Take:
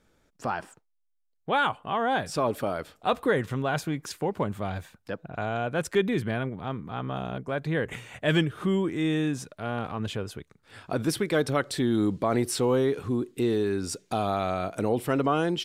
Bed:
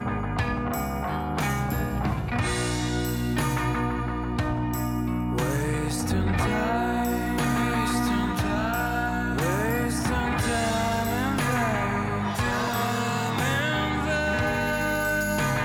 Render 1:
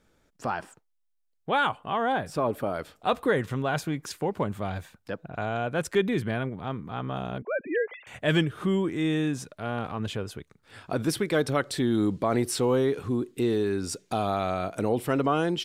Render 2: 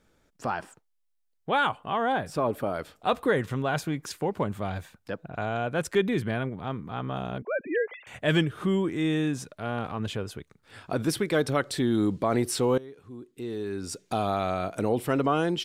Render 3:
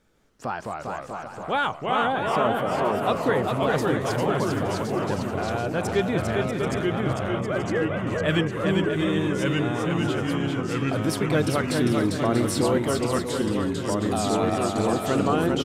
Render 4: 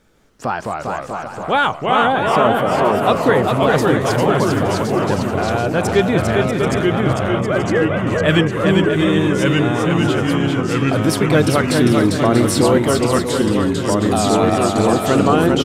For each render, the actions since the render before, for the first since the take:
2.12–2.74 s: peaking EQ 5.5 kHz -8 dB 2.3 oct; 7.42–8.07 s: formants replaced by sine waves
12.78–14.13 s: fade in quadratic, from -19.5 dB
bouncing-ball echo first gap 400 ms, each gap 0.6×, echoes 5; ever faster or slower copies 154 ms, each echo -2 st, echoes 2
trim +8.5 dB; peak limiter -1 dBFS, peak gain reduction 1 dB

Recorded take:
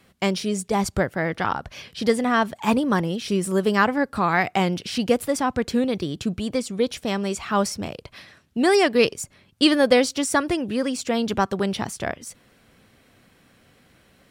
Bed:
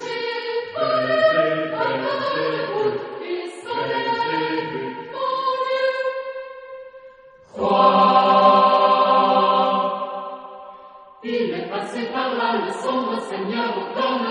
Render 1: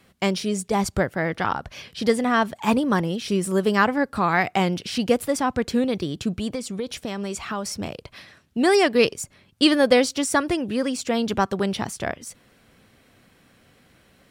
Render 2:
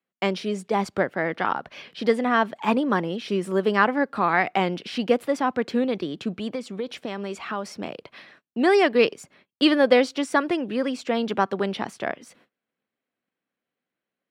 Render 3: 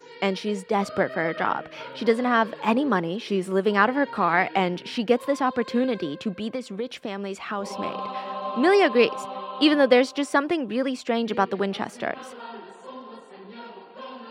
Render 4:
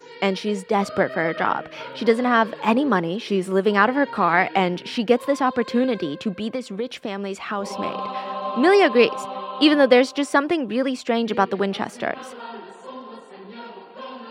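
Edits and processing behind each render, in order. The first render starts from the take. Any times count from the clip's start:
6.53–7.73 s: compression, threshold -24 dBFS
gate -51 dBFS, range -28 dB; three-band isolator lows -23 dB, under 180 Hz, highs -15 dB, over 4 kHz
add bed -18 dB
trim +3 dB; peak limiter -2 dBFS, peak gain reduction 1 dB

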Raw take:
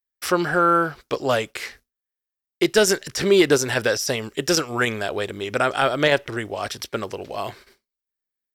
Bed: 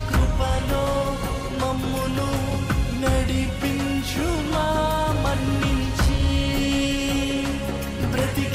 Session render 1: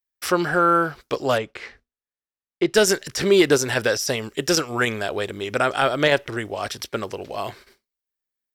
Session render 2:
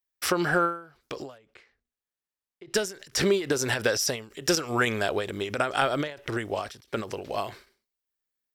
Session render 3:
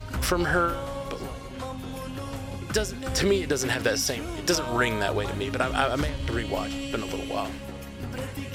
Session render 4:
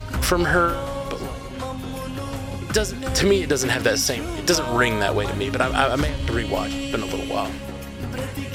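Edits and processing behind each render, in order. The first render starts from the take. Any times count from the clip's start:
1.38–2.74 s: tape spacing loss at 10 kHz 21 dB
compression, threshold -19 dBFS, peak gain reduction 8 dB; endings held to a fixed fall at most 130 dB/s
add bed -11 dB
trim +5 dB

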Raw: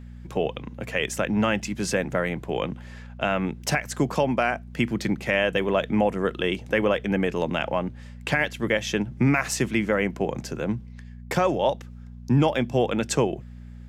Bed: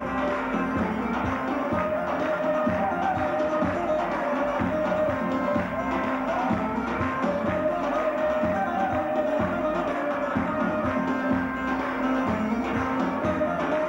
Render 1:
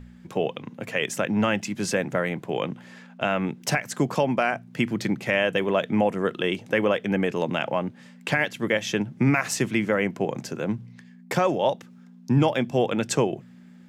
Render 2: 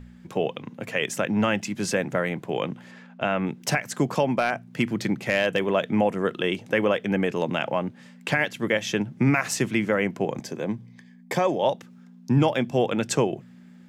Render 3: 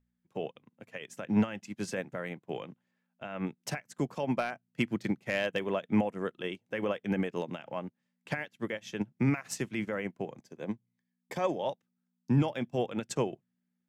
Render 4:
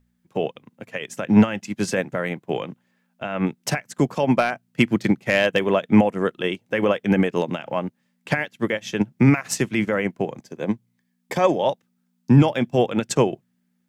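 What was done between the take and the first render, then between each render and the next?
de-hum 60 Hz, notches 2
2.91–3.47 s: treble shelf 5.4 kHz -9.5 dB; 4.38–5.63 s: overload inside the chain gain 13.5 dB; 10.39–11.63 s: comb of notches 1.4 kHz
peak limiter -16 dBFS, peak gain reduction 6.5 dB; upward expansion 2.5:1, over -43 dBFS
trim +12 dB

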